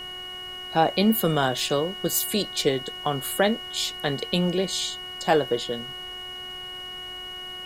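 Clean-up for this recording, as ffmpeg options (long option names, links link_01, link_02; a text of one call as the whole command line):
ffmpeg -i in.wav -af "adeclick=threshold=4,bandreject=frequency=366.5:width_type=h:width=4,bandreject=frequency=733:width_type=h:width=4,bandreject=frequency=1099.5:width_type=h:width=4,bandreject=frequency=1466:width_type=h:width=4,bandreject=frequency=1832.5:width_type=h:width=4,bandreject=frequency=2199:width_type=h:width=4,bandreject=frequency=2900:width=30,afftdn=noise_reduction=30:noise_floor=-37" out.wav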